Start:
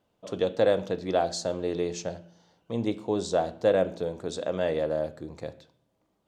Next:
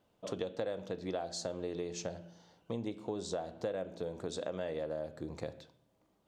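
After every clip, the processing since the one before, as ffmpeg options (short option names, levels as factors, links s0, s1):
-af "acompressor=threshold=0.0178:ratio=6"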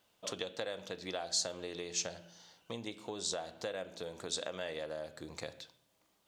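-af "tiltshelf=f=1100:g=-8.5,volume=1.19"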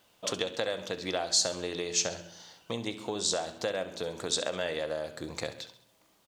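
-af "aecho=1:1:67|134|201|268:0.188|0.0866|0.0399|0.0183,volume=2.37"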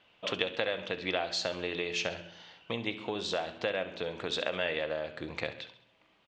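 -af "lowpass=f=2700:t=q:w=2.3,volume=0.891"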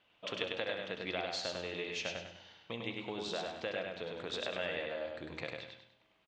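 -af "aecho=1:1:100|200|300|400|500:0.668|0.247|0.0915|0.0339|0.0125,volume=0.447"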